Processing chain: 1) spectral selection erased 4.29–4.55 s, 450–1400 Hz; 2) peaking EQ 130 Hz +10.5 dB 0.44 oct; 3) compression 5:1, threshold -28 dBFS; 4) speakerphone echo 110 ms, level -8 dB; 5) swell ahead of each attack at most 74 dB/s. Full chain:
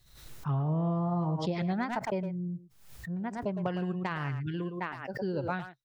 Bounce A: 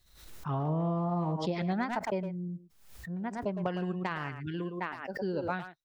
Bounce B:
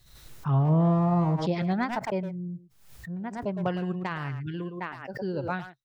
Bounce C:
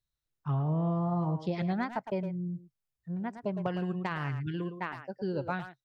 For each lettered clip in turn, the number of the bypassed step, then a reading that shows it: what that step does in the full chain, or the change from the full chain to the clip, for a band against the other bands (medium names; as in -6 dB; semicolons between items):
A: 2, 125 Hz band -3.0 dB; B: 3, mean gain reduction 2.5 dB; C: 5, 4 kHz band -2.0 dB